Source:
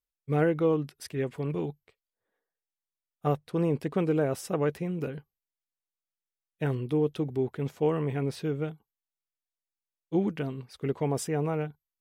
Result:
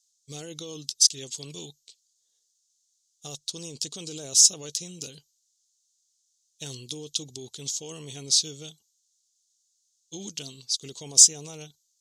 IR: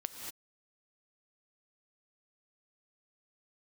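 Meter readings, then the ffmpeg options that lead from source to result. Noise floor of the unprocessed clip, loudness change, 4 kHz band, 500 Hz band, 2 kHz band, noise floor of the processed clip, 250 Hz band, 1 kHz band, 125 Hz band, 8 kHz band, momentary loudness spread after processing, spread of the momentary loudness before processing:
below −85 dBFS, +7.5 dB, +22.5 dB, −14.5 dB, −9.5 dB, −73 dBFS, −13.5 dB, below −15 dB, −13.0 dB, +26.5 dB, 23 LU, 9 LU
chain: -af "lowpass=frequency=6600:width_type=q:width=4.5,alimiter=limit=-22dB:level=0:latency=1:release=18,highshelf=frequency=2500:width_type=q:width=1.5:gain=13.5,aexciter=amount=7.4:drive=2.2:freq=3200,volume=-11.5dB"

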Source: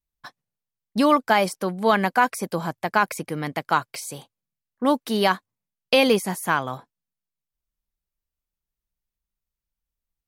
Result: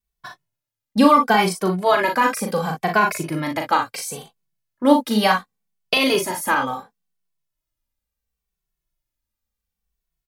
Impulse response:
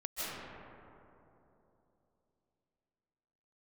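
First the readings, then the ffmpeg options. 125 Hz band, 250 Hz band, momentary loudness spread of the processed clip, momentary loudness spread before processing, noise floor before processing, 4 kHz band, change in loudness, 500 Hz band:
+3.0 dB, +4.5 dB, 12 LU, 14 LU, below −85 dBFS, +3.0 dB, +3.0 dB, +2.0 dB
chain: -filter_complex "[0:a]aecho=1:1:38|56:0.562|0.335,alimiter=level_in=6dB:limit=-1dB:release=50:level=0:latency=1,asplit=2[link_01][link_02];[link_02]adelay=2.2,afreqshift=-0.71[link_03];[link_01][link_03]amix=inputs=2:normalize=1"

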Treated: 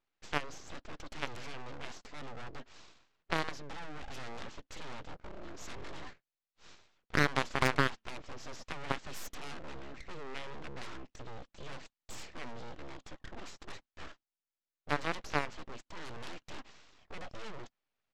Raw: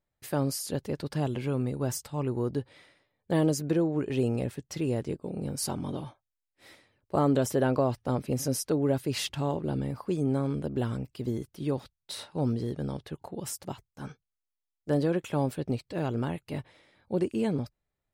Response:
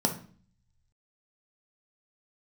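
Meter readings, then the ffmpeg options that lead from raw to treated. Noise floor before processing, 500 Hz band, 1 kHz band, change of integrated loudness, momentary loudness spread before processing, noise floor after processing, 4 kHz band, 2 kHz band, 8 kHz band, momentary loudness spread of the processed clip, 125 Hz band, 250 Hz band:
below −85 dBFS, −13.0 dB, −2.0 dB, −9.0 dB, 12 LU, below −85 dBFS, −3.0 dB, +6.0 dB, −12.0 dB, 18 LU, −14.5 dB, −15.5 dB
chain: -af "highpass=170,equalizer=frequency=270:width_type=q:width=4:gain=-6,equalizer=frequency=950:width_type=q:width=4:gain=8,equalizer=frequency=1500:width_type=q:width=4:gain=7,equalizer=frequency=3000:width_type=q:width=4:gain=5,lowpass=frequency=4700:width=0.5412,lowpass=frequency=4700:width=1.3066,tremolo=f=0.66:d=0.36,aresample=16000,aeval=exprs='abs(val(0))':channel_layout=same,aresample=44100,aeval=exprs='0.251*(cos(1*acos(clip(val(0)/0.251,-1,1)))-cos(1*PI/2))+0.0447*(cos(8*acos(clip(val(0)/0.251,-1,1)))-cos(8*PI/2))':channel_layout=same,volume=2.5dB"

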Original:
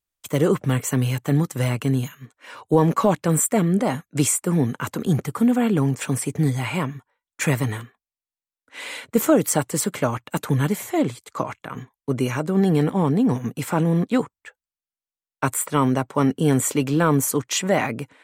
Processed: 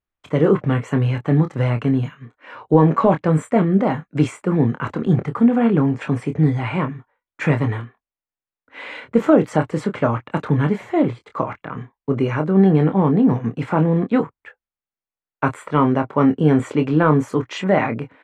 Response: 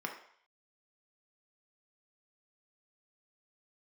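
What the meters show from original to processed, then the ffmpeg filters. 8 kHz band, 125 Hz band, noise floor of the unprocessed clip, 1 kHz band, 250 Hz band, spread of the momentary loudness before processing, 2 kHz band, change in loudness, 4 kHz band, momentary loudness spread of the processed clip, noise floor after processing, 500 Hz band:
below −20 dB, +3.0 dB, below −85 dBFS, +3.5 dB, +4.0 dB, 10 LU, +1.5 dB, +3.0 dB, −5.0 dB, 10 LU, below −85 dBFS, +3.5 dB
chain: -filter_complex "[0:a]lowpass=2100,asplit=2[link_01][link_02];[link_02]adelay=26,volume=-8dB[link_03];[link_01][link_03]amix=inputs=2:normalize=0,volume=3dB"

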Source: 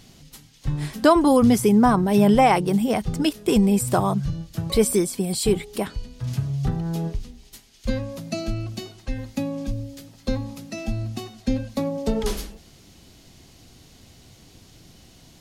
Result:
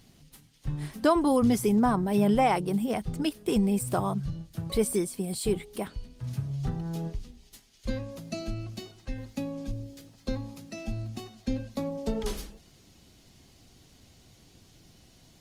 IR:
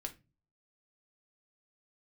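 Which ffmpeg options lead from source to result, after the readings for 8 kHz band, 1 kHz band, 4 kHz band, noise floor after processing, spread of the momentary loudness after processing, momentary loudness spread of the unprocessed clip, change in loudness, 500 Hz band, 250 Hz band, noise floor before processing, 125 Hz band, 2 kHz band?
−8.0 dB, −7.5 dB, −8.0 dB, −59 dBFS, 17 LU, 17 LU, −7.0 dB, −7.0 dB, −7.0 dB, −52 dBFS, −7.0 dB, −7.5 dB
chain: -af "volume=-7dB" -ar 48000 -c:a libopus -b:a 32k

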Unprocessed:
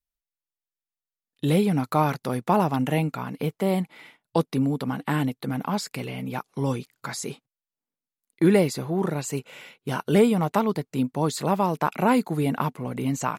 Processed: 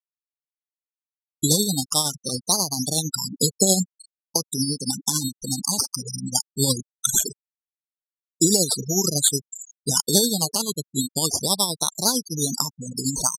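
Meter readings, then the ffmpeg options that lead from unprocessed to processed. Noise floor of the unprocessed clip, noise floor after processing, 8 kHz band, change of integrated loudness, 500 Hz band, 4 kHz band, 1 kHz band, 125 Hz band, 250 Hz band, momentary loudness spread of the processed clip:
below −85 dBFS, below −85 dBFS, +19.5 dB, +3.5 dB, −4.0 dB, +15.0 dB, −7.0 dB, −2.5 dB, −3.0 dB, 8 LU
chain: -filter_complex "[0:a]highshelf=frequency=3100:gain=6.5,asplit=2[link_01][link_02];[link_02]aecho=0:1:278|556|834|1112:0.0668|0.0381|0.0217|0.0124[link_03];[link_01][link_03]amix=inputs=2:normalize=0,acrusher=samples=9:mix=1:aa=0.000001:lfo=1:lforange=5.4:lforate=0.21,aexciter=amount=13.9:drive=1.6:freq=3800,afftfilt=real='re*gte(hypot(re,im),0.141)':imag='im*gte(hypot(re,im),0.141)':win_size=1024:overlap=0.75,adynamicequalizer=threshold=0.0398:dfrequency=7800:dqfactor=2:tfrequency=7800:tqfactor=2:attack=5:release=100:ratio=0.375:range=3.5:mode=cutabove:tftype=bell,acompressor=threshold=-19dB:ratio=2,lowpass=frequency=11000:width=0.5412,lowpass=frequency=11000:width=1.3066,dynaudnorm=framelen=300:gausssize=3:maxgain=10dB,tremolo=f=11:d=0.48,asuperstop=centerf=2000:order=4:qfactor=2.9"

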